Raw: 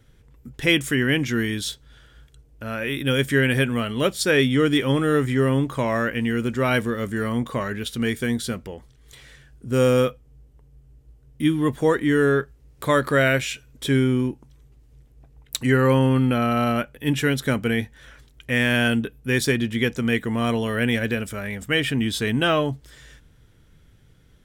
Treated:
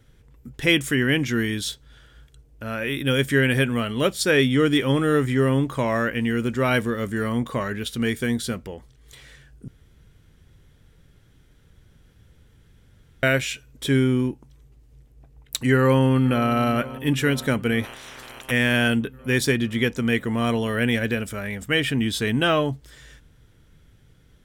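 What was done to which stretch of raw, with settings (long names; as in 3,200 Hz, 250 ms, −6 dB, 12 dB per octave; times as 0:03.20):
0:09.68–0:13.23: fill with room tone
0:15.77–0:16.50: delay throw 480 ms, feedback 75%, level −17 dB
0:17.83–0:18.50: ceiling on every frequency bin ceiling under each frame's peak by 28 dB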